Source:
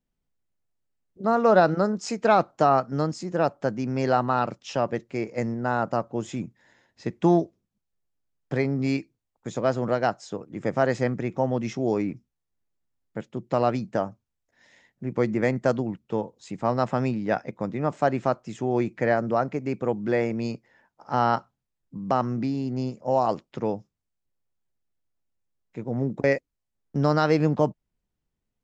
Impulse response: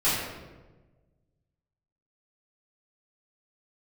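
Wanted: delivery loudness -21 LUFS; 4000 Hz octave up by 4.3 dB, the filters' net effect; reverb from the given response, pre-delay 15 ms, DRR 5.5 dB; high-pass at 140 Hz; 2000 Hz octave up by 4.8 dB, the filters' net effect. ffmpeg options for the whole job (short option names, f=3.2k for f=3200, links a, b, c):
-filter_complex "[0:a]highpass=140,equalizer=f=2k:t=o:g=5.5,equalizer=f=4k:t=o:g=4,asplit=2[a][b];[1:a]atrim=start_sample=2205,adelay=15[c];[b][c]afir=irnorm=-1:irlink=0,volume=-19.5dB[d];[a][d]amix=inputs=2:normalize=0,volume=3dB"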